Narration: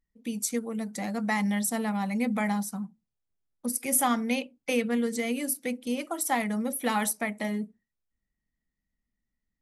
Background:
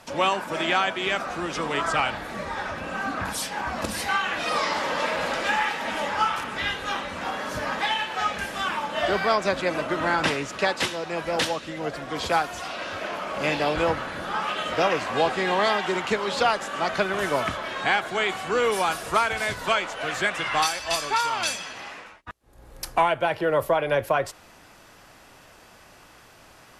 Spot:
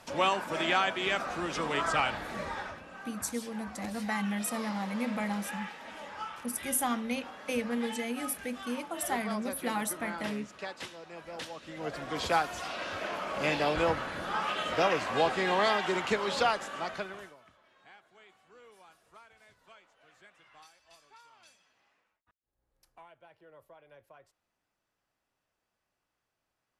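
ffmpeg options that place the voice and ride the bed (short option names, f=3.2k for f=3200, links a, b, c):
-filter_complex "[0:a]adelay=2800,volume=-5.5dB[a];[1:a]volume=7.5dB,afade=t=out:st=2.45:d=0.39:silence=0.251189,afade=t=in:st=11.51:d=0.52:silence=0.251189,afade=t=out:st=16.35:d=1:silence=0.0354813[b];[a][b]amix=inputs=2:normalize=0"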